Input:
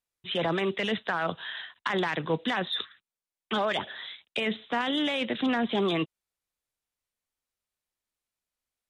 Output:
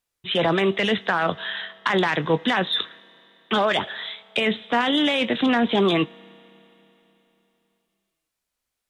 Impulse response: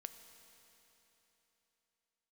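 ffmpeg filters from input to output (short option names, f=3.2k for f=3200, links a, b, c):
-filter_complex "[0:a]asplit=2[a][b];[1:a]atrim=start_sample=2205,lowshelf=f=470:g=-6.5,adelay=21[c];[b][c]afir=irnorm=-1:irlink=0,volume=-8dB[d];[a][d]amix=inputs=2:normalize=0,volume=7dB"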